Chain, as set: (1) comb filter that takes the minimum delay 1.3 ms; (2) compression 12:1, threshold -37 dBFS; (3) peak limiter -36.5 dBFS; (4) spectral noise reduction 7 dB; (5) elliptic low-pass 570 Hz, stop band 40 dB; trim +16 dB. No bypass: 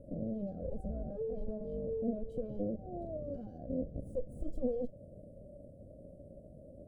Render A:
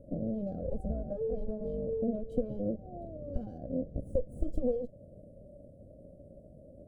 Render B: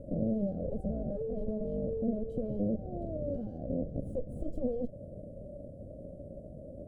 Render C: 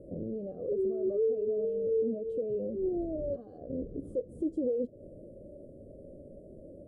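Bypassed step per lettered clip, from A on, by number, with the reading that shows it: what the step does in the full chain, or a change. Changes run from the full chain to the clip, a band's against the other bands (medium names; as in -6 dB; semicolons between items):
3, mean gain reduction 2.0 dB; 4, 1 kHz band -3.5 dB; 1, crest factor change -5.0 dB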